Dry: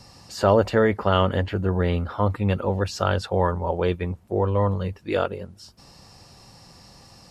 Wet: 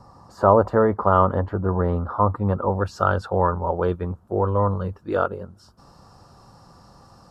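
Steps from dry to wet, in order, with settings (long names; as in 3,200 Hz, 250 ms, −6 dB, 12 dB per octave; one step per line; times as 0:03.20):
high shelf with overshoot 1,700 Hz −14 dB, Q 3, from 0:02.80 −8 dB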